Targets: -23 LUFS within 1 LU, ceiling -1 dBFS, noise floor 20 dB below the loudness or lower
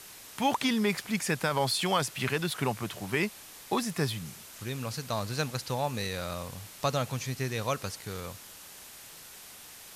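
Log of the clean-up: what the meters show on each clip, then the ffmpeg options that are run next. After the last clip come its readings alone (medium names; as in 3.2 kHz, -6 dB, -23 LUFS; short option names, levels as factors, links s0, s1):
noise floor -49 dBFS; noise floor target -52 dBFS; loudness -31.5 LUFS; peak level -15.5 dBFS; loudness target -23.0 LUFS
-> -af "afftdn=nr=6:nf=-49"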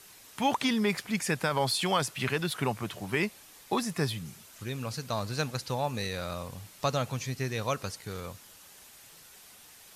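noise floor -53 dBFS; loudness -31.5 LUFS; peak level -15.5 dBFS; loudness target -23.0 LUFS
-> -af "volume=2.66"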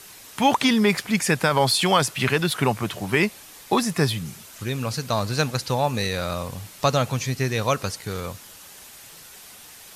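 loudness -23.0 LUFS; peak level -7.0 dBFS; noise floor -45 dBFS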